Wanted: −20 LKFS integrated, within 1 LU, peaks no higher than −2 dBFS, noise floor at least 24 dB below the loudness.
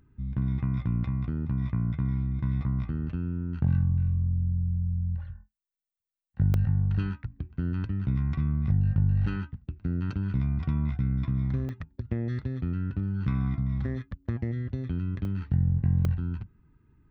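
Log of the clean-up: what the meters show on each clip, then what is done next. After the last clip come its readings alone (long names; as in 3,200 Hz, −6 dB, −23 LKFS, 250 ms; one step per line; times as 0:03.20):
number of dropouts 4; longest dropout 1.1 ms; integrated loudness −29.0 LKFS; sample peak −14.5 dBFS; target loudness −20.0 LKFS
→ repair the gap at 0:06.54/0:11.69/0:15.25/0:16.05, 1.1 ms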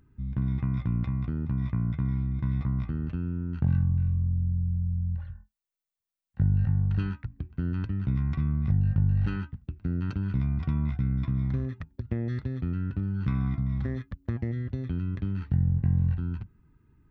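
number of dropouts 0; integrated loudness −29.0 LKFS; sample peak −14.5 dBFS; target loudness −20.0 LKFS
→ level +9 dB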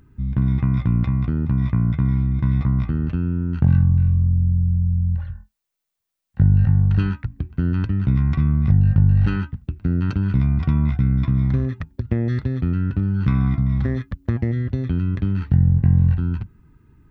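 integrated loudness −20.0 LKFS; sample peak −5.5 dBFS; background noise floor −72 dBFS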